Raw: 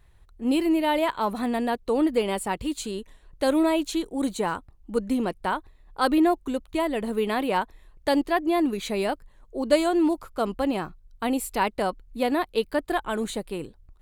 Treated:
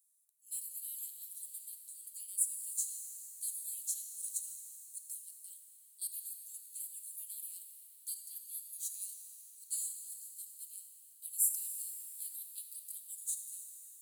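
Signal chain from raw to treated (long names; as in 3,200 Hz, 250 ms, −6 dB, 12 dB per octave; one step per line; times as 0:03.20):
inverse Chebyshev high-pass filter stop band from 1,500 Hz, stop band 80 dB
reverb with rising layers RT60 3.1 s, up +7 semitones, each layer −8 dB, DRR 5.5 dB
level +6.5 dB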